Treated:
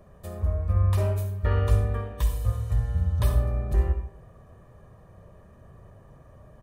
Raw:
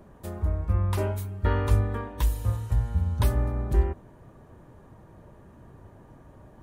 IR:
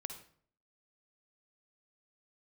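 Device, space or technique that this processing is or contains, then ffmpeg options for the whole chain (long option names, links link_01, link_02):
microphone above a desk: -filter_complex "[0:a]aecho=1:1:1.7:0.53[link_01];[1:a]atrim=start_sample=2205[link_02];[link_01][link_02]afir=irnorm=-1:irlink=0"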